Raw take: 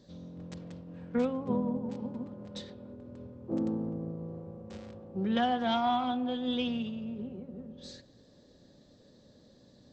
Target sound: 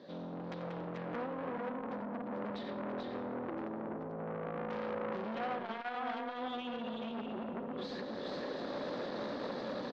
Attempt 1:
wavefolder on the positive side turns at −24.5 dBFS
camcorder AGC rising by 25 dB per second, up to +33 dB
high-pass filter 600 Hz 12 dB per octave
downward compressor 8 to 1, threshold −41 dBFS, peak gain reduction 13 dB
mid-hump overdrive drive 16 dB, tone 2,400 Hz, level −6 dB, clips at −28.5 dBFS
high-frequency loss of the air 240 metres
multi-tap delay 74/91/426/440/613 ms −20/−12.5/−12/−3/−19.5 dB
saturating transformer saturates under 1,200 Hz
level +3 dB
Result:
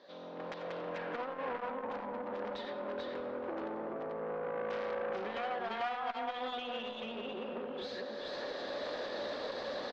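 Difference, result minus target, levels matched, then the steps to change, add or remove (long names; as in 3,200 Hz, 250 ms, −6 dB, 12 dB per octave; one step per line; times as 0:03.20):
250 Hz band −6.5 dB
change: high-pass filter 210 Hz 12 dB per octave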